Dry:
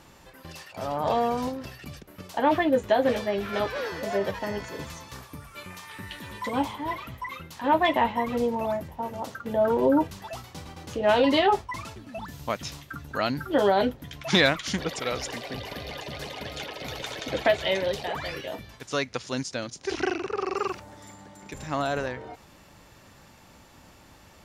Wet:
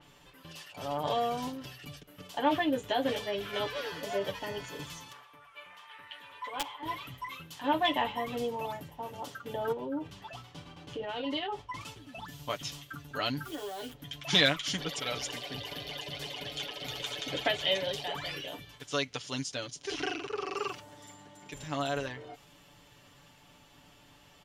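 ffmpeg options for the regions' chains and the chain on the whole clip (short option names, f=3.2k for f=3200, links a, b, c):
-filter_complex "[0:a]asettb=1/sr,asplit=3[a][b][c];[a]atrim=end=5.124[d];[b]atrim=start=5.12:end=6.83,asetpts=PTS-STARTPTS,afade=t=in:d=0.004:c=qsin,afade=t=out:st=1.706:d=0.004:c=qsin,acrossover=split=540 2800:gain=0.1 1 0.158[e][f][g];[e][f][g]amix=inputs=3:normalize=0,aeval=exprs='(mod(11.2*val(0)+1,2)-1)/11.2':c=same[h];[c]atrim=start=6.826[i];[d][h]acrossfade=d=0.004:c1=hsin:c2=qsin[j];[j][i]acrossfade=d=0.004:c1=qsin:c2=hsin,asettb=1/sr,asplit=3[k][l][m];[k]atrim=end=9.724[n];[l]atrim=start=9.72:end=11.81,asetpts=PTS-STARTPTS,afade=t=in:d=0.004:c=qsin,afade=t=out:st=2.086:d=0.004:c=qsin,aemphasis=mode=reproduction:type=50kf,acompressor=threshold=-26dB:ratio=6:attack=3.2:release=140:knee=1:detection=peak[o];[m]atrim=start=11.806[p];[n][o]acrossfade=d=0.004:c1=hsin:c2=qsin[q];[q][p]acrossfade=d=0.004:c1=qsin:c2=hsin,asettb=1/sr,asplit=3[r][s][t];[r]atrim=end=13.454[u];[s]atrim=start=13.45:end=13.93,asetpts=PTS-STARTPTS,afade=t=in:d=0.004:c=qsin,afade=t=out:st=0.476:d=0.004:c=qsin,aecho=1:1:2.7:0.41,atrim=end_sample=21168,acompressor=threshold=-30dB:ratio=10:attack=3.2:release=140:knee=1:detection=peak,acrusher=bits=8:dc=4:mix=0:aa=0.000001[v];[t]atrim=start=13.926[w];[u][v]acrossfade=d=0.004:c1=hsin:c2=qsin[x];[x][w]acrossfade=d=0.004:c1=qsin:c2=hsin,equalizer=f=3.1k:w=3.3:g=9.5,aecho=1:1:6.9:0.65,adynamicequalizer=threshold=0.00708:dfrequency=4400:dqfactor=0.7:tfrequency=4400:tqfactor=0.7:attack=5:release=100:ratio=0.375:range=2.5:mode=boostabove:tftype=highshelf,volume=-8dB"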